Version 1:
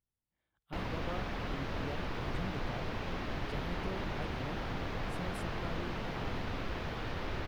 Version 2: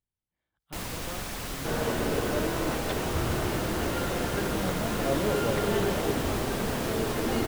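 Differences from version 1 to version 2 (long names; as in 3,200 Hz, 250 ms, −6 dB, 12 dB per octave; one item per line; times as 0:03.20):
first sound: remove high-frequency loss of the air 290 metres
second sound: unmuted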